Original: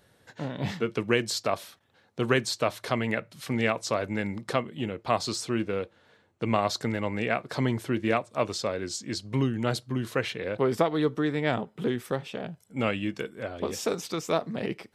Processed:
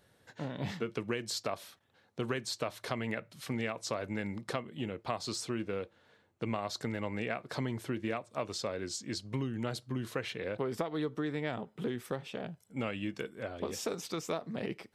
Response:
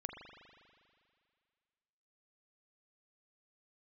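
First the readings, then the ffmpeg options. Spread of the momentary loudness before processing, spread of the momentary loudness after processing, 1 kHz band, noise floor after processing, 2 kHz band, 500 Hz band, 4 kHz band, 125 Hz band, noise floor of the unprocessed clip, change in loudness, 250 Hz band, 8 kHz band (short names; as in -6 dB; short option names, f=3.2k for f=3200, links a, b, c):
8 LU, 5 LU, -9.5 dB, -69 dBFS, -8.5 dB, -8.5 dB, -6.5 dB, -7.5 dB, -64 dBFS, -8.0 dB, -7.5 dB, -5.5 dB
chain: -af "acompressor=threshold=-26dB:ratio=6,volume=-4.5dB"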